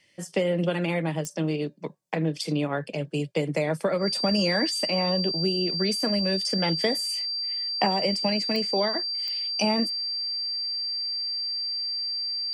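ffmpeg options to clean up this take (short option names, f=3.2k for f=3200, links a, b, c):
-af "adeclick=t=4,bandreject=f=4.7k:w=30"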